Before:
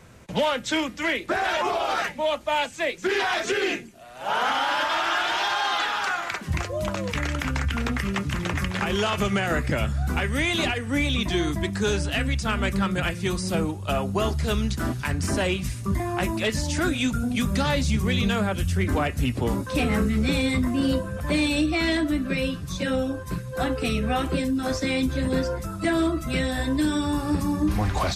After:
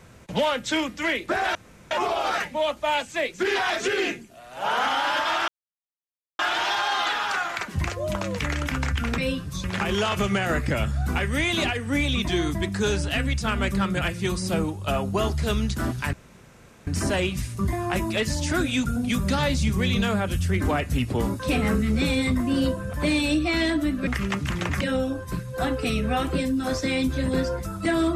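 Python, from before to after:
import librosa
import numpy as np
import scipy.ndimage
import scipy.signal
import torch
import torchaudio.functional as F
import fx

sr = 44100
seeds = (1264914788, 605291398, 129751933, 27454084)

y = fx.edit(x, sr, fx.insert_room_tone(at_s=1.55, length_s=0.36),
    fx.insert_silence(at_s=5.12, length_s=0.91),
    fx.swap(start_s=7.91, length_s=0.74, other_s=22.34, other_length_s=0.46),
    fx.insert_room_tone(at_s=15.14, length_s=0.74), tone=tone)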